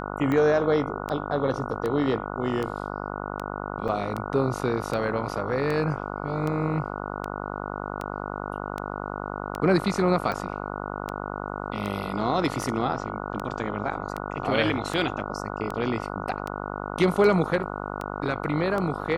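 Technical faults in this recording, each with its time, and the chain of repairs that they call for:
buzz 50 Hz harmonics 29 -33 dBFS
tick 78 rpm -17 dBFS
3.88–3.89 s: dropout 6.1 ms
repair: de-click; de-hum 50 Hz, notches 29; interpolate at 3.88 s, 6.1 ms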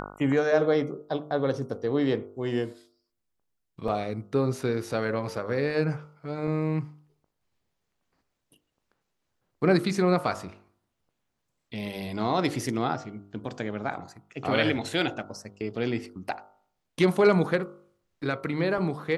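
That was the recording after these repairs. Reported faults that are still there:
nothing left

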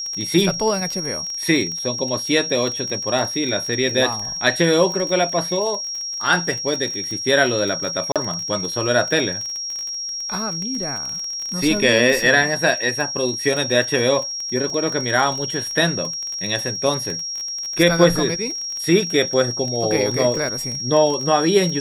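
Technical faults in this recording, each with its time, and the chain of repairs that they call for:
crackle 25 per s -24 dBFS
whine 5.6 kHz -25 dBFS
8.12–8.16 s: dropout 37 ms
14.70 s: dropout 2.4 ms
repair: de-click; band-stop 5.6 kHz, Q 30; interpolate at 8.12 s, 37 ms; interpolate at 14.70 s, 2.4 ms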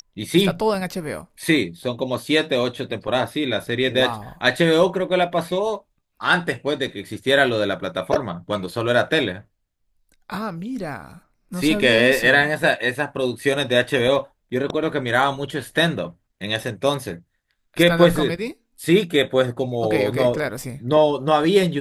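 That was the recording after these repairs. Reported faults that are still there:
nothing left

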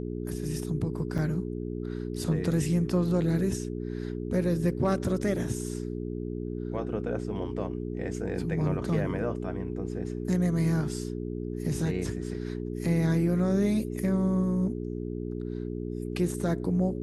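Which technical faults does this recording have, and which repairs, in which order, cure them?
hum 60 Hz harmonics 7 -34 dBFS
1.18–1.19 s: dropout 6.4 ms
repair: de-hum 60 Hz, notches 7; interpolate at 1.18 s, 6.4 ms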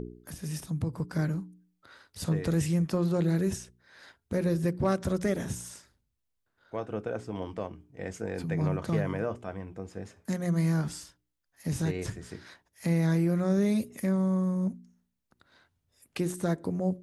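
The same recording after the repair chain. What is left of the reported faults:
nothing left

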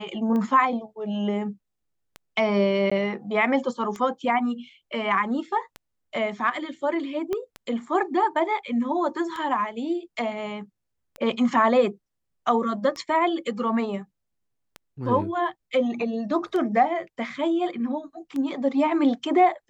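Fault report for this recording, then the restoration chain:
tick 33 1/3 rpm -20 dBFS
2.90–2.92 s: dropout 15 ms
7.33 s: pop -16 dBFS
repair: de-click; interpolate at 2.90 s, 15 ms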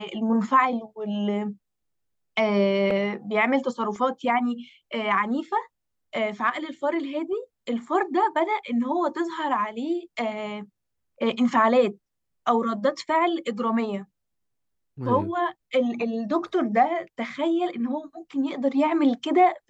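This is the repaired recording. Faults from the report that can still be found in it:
7.33 s: pop

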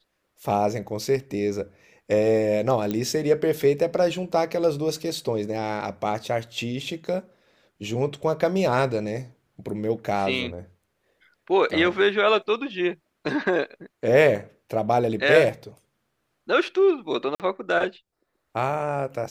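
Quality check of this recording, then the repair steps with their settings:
2.91 s: pop -14 dBFS
17.35–17.40 s: dropout 48 ms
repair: de-click; interpolate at 17.35 s, 48 ms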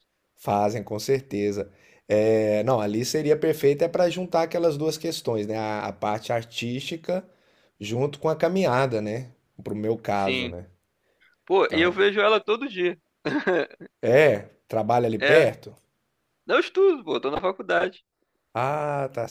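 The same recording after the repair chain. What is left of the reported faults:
nothing left

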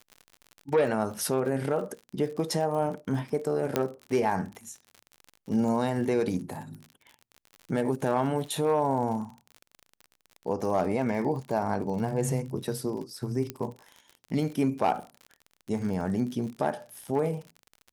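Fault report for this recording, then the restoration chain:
crackle 46 per s -36 dBFS
3.76 s: pop -10 dBFS
13.50 s: pop -17 dBFS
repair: de-click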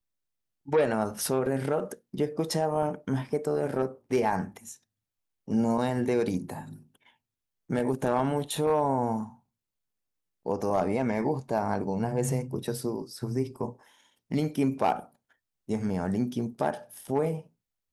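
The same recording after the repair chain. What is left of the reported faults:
13.50 s: pop

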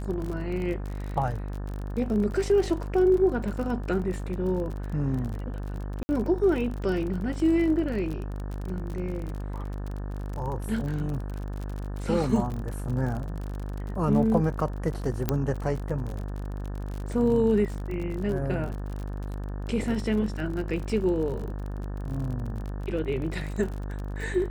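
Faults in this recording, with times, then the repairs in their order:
buzz 50 Hz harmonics 36 -33 dBFS
crackle 43 per s -33 dBFS
6.03–6.09 s: dropout 60 ms
15.29 s: pop -10 dBFS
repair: de-click; de-hum 50 Hz, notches 36; interpolate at 6.03 s, 60 ms

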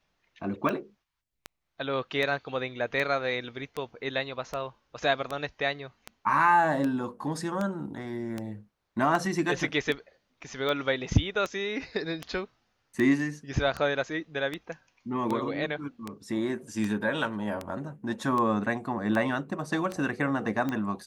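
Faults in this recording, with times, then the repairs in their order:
tick 78 rpm -18 dBFS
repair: de-click

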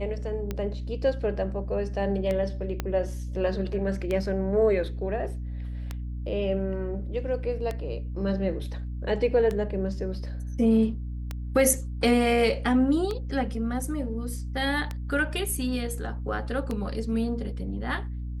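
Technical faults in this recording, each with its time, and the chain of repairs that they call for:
hum 60 Hz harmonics 5 -33 dBFS
tick 33 1/3 rpm -17 dBFS
2.80 s: pop -14 dBFS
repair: de-click; de-hum 60 Hz, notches 5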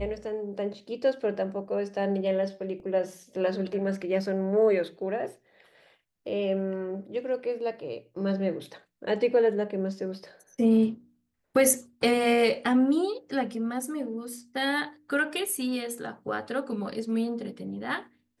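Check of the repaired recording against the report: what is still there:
2.80 s: pop

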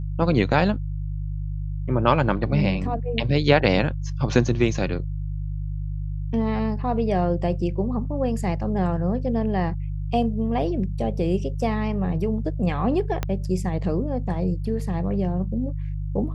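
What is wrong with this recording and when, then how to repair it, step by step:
hum 50 Hz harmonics 3 -28 dBFS
13.23 s: pop -11 dBFS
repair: de-click; de-hum 50 Hz, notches 3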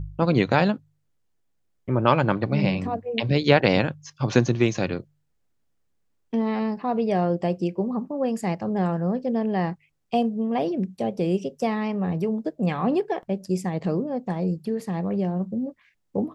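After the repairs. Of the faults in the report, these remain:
13.23 s: pop

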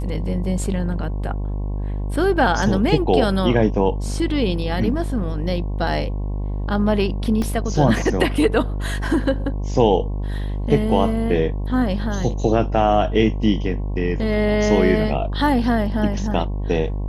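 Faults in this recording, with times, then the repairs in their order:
buzz 50 Hz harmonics 22 -24 dBFS
7.42 s: dropout 2.6 ms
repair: de-hum 50 Hz, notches 22; interpolate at 7.42 s, 2.6 ms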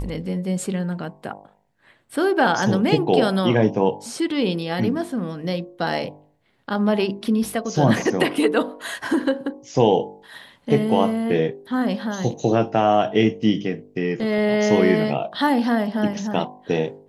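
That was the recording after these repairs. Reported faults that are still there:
nothing left

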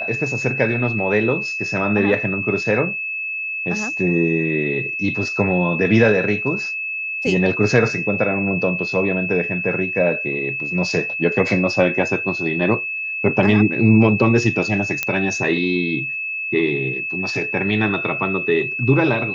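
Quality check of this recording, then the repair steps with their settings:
whine 2.6 kHz -23 dBFS
15.03 s: pop -5 dBFS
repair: de-click; band-stop 2.6 kHz, Q 30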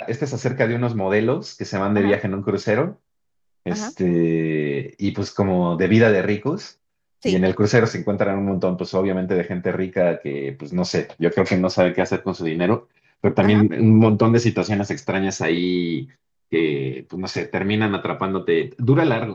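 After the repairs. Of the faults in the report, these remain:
nothing left

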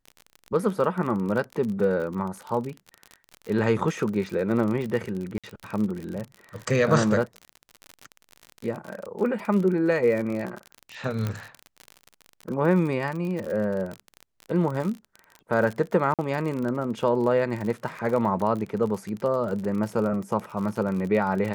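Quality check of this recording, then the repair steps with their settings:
crackle 42 per s -30 dBFS
5.38–5.44 s: dropout 56 ms
11.27 s: pop -15 dBFS
16.14–16.19 s: dropout 47 ms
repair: de-click; interpolate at 5.38 s, 56 ms; interpolate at 16.14 s, 47 ms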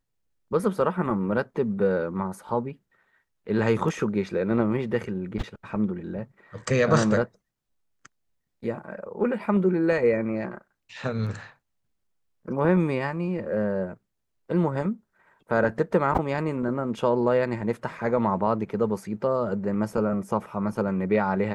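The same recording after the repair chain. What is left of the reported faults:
11.27 s: pop

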